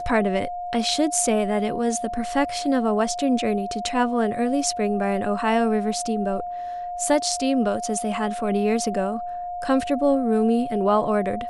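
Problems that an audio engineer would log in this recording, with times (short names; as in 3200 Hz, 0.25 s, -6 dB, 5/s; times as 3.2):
tone 710 Hz -28 dBFS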